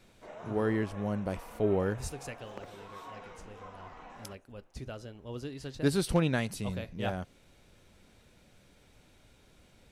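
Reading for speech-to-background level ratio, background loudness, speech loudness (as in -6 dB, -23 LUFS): 16.0 dB, -49.0 LUFS, -33.0 LUFS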